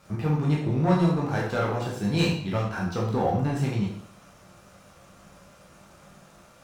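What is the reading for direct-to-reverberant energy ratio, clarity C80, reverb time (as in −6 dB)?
−4.0 dB, 7.5 dB, 0.60 s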